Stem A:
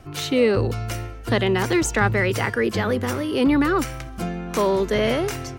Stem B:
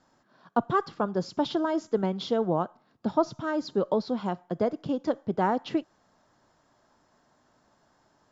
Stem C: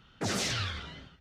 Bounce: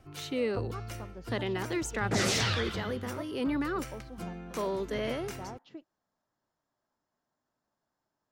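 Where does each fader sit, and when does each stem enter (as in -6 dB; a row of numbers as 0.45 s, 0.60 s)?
-12.5 dB, -19.0 dB, +2.5 dB; 0.00 s, 0.00 s, 1.90 s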